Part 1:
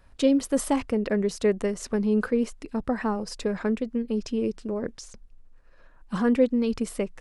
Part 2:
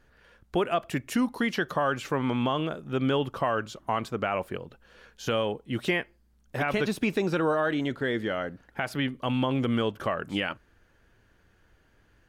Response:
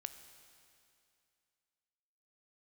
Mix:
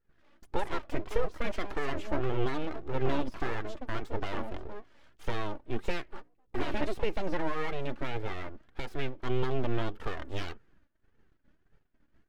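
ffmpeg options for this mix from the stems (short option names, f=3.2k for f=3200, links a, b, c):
-filter_complex "[0:a]highshelf=f=3.2k:g=-7.5,alimiter=limit=-18.5dB:level=0:latency=1:release=238,volume=-6dB[a];[1:a]equalizer=f=110:w=0.66:g=11.5,agate=range=-16dB:threshold=-55dB:ratio=16:detection=peak,volume=-2.5dB,asplit=2[b][c];[c]apad=whole_len=317685[d];[a][d]sidechaingate=range=-33dB:threshold=-50dB:ratio=16:detection=peak[e];[e][b]amix=inputs=2:normalize=0,aeval=exprs='abs(val(0))':c=same,flanger=delay=2.1:depth=1.5:regen=33:speed=1.7:shape=triangular,highshelf=f=5.3k:g=-10"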